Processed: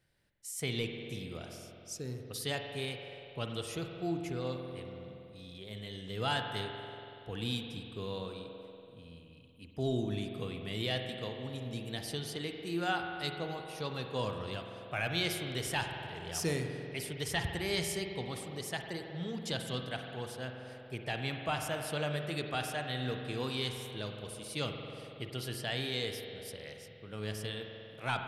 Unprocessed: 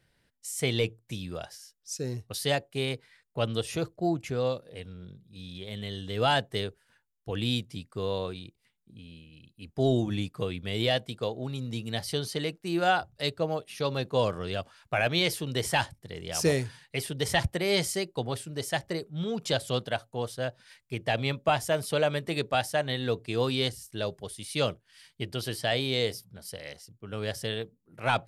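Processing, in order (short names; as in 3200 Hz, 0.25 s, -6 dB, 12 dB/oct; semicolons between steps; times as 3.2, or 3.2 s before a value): high shelf 9900 Hz +4 dB; spring tank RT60 2.6 s, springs 47 ms, chirp 45 ms, DRR 4 dB; dynamic EQ 580 Hz, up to -6 dB, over -39 dBFS, Q 1.8; gain -7 dB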